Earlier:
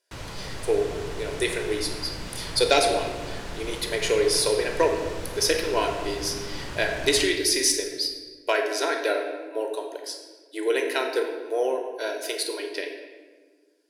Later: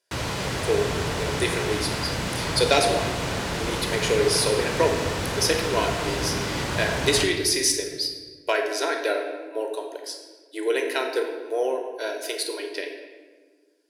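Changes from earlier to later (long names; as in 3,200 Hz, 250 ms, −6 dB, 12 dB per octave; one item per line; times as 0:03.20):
background +10.0 dB
master: add high-pass filter 67 Hz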